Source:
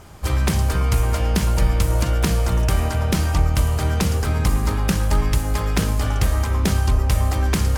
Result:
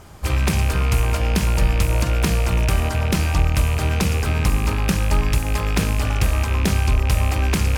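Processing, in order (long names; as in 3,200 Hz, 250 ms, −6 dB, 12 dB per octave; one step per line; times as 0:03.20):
loose part that buzzes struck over −20 dBFS, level −18 dBFS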